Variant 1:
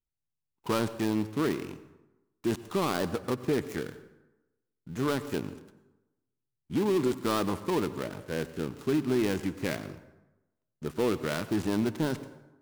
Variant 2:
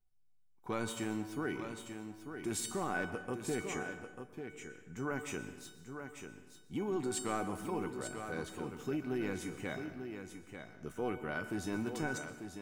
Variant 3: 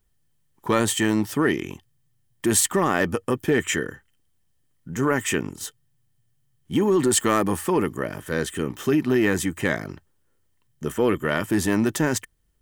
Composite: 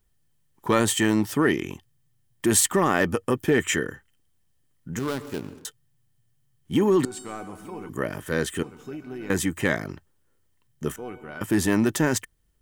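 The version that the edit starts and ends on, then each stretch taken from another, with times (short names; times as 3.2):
3
4.99–5.65 from 1
7.05–7.89 from 2
8.63–9.3 from 2
10.96–11.41 from 2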